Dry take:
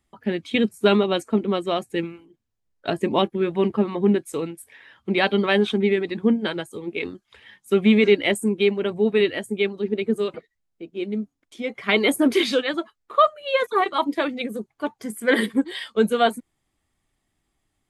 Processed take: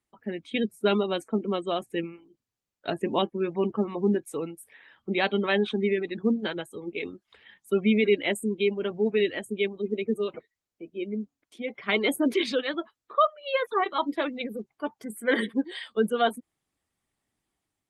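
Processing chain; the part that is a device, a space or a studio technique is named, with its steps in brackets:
0:15.08–0:15.92: dynamic equaliser 5,300 Hz, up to −3 dB, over −52 dBFS, Q 4.2
noise-suppressed video call (high-pass filter 120 Hz 6 dB per octave; gate on every frequency bin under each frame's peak −30 dB strong; automatic gain control gain up to 4 dB; level −8 dB; Opus 24 kbit/s 48,000 Hz)

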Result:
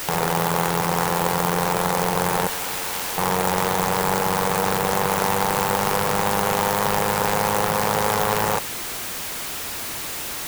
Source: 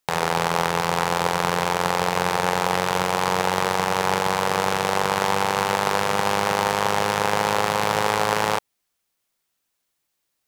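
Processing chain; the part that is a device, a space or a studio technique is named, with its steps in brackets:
0:02.47–0:03.18: first difference
early CD player with a faulty converter (converter with a step at zero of −19.5 dBFS; converter with an unsteady clock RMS 0.057 ms)
level −2.5 dB

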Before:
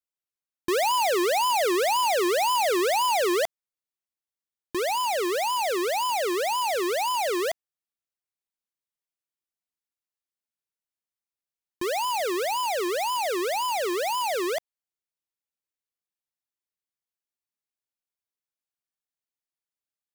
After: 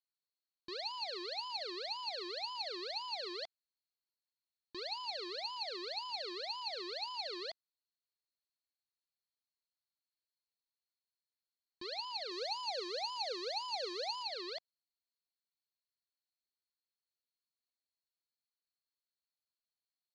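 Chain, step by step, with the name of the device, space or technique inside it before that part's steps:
overdriven synthesiser ladder filter (soft clipping −32 dBFS, distortion −15 dB; transistor ladder low-pass 4,400 Hz, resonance 90%)
0:12.31–0:14.23: thirty-one-band graphic EQ 500 Hz +8 dB, 800 Hz +6 dB, 6,300 Hz +9 dB, 10,000 Hz +11 dB

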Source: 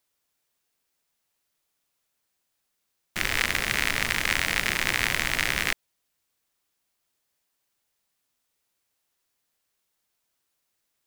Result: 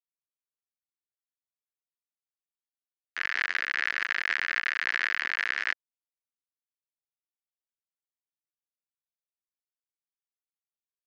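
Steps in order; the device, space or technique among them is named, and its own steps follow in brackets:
hand-held game console (bit reduction 4 bits; loudspeaker in its box 410–4,400 Hz, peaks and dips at 550 Hz −8 dB, 840 Hz −6 dB, 1,700 Hz +7 dB, 2,400 Hz −4 dB, 3,600 Hz −8 dB)
level −3.5 dB

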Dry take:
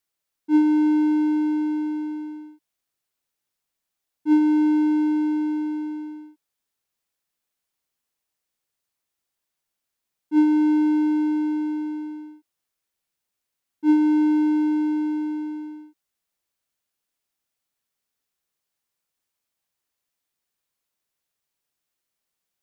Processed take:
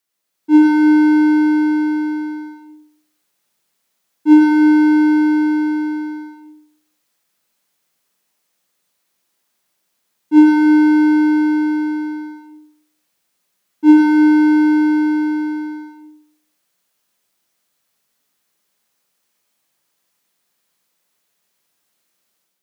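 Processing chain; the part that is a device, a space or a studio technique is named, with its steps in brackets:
far laptop microphone (convolution reverb RT60 0.55 s, pre-delay 86 ms, DRR −0.5 dB; high-pass filter 140 Hz; automatic gain control gain up to 6 dB)
level +4 dB

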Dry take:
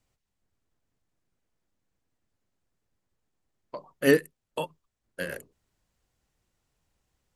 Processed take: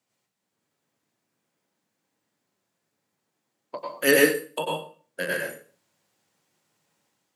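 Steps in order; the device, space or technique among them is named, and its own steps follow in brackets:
high-pass filter 240 Hz 6 dB per octave
far laptop microphone (convolution reverb RT60 0.40 s, pre-delay 90 ms, DRR −2.5 dB; high-pass filter 120 Hz 24 dB per octave; automatic gain control gain up to 4 dB)
0:03.78–0:04.59: spectral tilt +2 dB per octave

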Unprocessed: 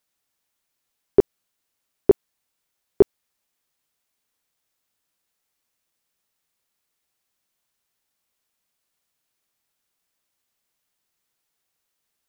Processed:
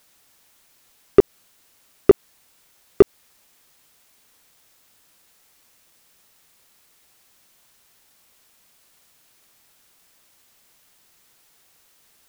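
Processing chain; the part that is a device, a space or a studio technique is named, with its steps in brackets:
loud club master (downward compressor 2.5 to 1, threshold −14 dBFS, peak gain reduction 4.5 dB; hard clipping −9 dBFS, distortion −17 dB; boost into a limiter +20 dB)
level −1 dB

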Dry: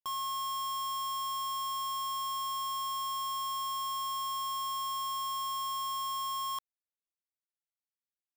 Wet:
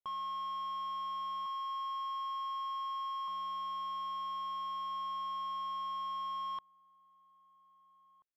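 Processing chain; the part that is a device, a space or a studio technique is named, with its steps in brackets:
0:01.46–0:03.28: Butterworth high-pass 350 Hz 36 dB per octave
shout across a valley (high-frequency loss of the air 360 metres; slap from a distant wall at 280 metres, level −23 dB)
level −1 dB

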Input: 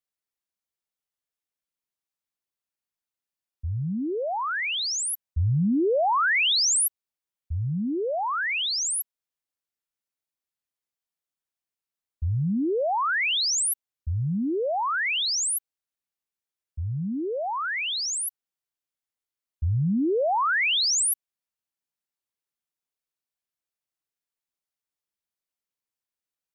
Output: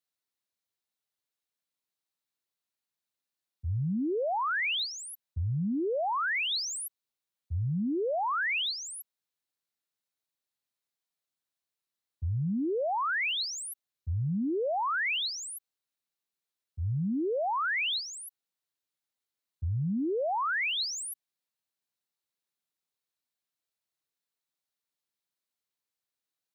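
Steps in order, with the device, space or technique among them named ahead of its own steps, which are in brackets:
broadcast voice chain (high-pass filter 81 Hz 24 dB per octave; de-essing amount 100%; downward compressor 4 to 1, threshold −26 dBFS, peak gain reduction 4.5 dB; parametric band 4,000 Hz +5.5 dB 0.32 octaves; brickwall limiter −26.5 dBFS, peak gain reduction 3 dB)

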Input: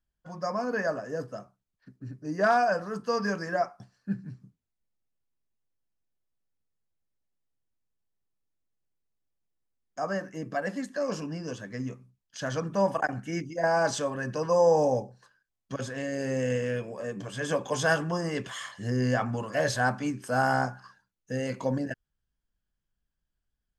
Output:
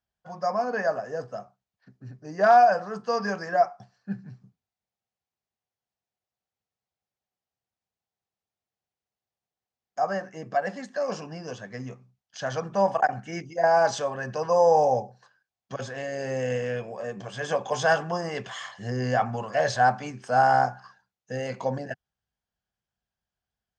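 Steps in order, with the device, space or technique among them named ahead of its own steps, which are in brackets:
car door speaker (loudspeaker in its box 90–6,800 Hz, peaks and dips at 160 Hz −4 dB, 290 Hz −10 dB, 750 Hz +9 dB)
level +1 dB

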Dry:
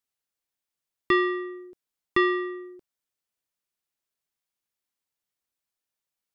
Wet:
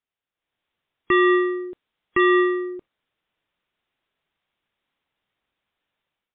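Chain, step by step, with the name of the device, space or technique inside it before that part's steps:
0:01.60–0:02.18: high-shelf EQ 3,700 Hz +4.5 dB
low-bitrate web radio (automatic gain control gain up to 12 dB; brickwall limiter −14.5 dBFS, peak gain reduction 11.5 dB; level +2 dB; MP3 32 kbit/s 8,000 Hz)

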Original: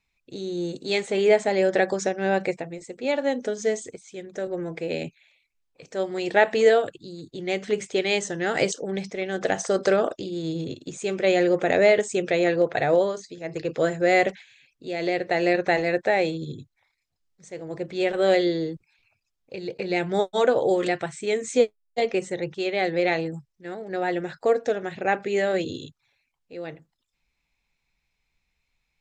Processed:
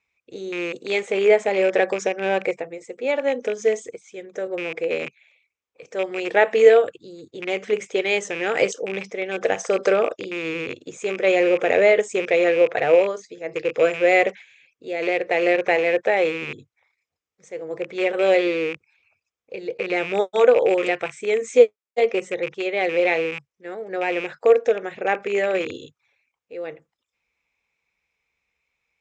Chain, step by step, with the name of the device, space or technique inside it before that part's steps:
parametric band 260 Hz −3 dB 0.68 octaves
car door speaker with a rattle (loose part that buzzes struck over −35 dBFS, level −22 dBFS; loudspeaker in its box 96–7,600 Hz, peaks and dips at 120 Hz −7 dB, 170 Hz −8 dB, 480 Hz +8 dB, 1,200 Hz +4 dB, 2,300 Hz +5 dB, 4,300 Hz −8 dB)

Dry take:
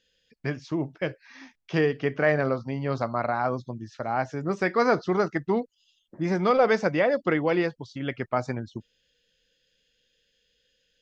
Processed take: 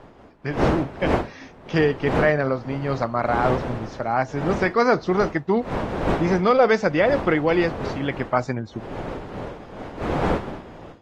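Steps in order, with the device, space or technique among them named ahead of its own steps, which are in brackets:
smartphone video outdoors (wind on the microphone 630 Hz −33 dBFS; automatic gain control gain up to 9.5 dB; level −3.5 dB; AAC 48 kbit/s 48,000 Hz)

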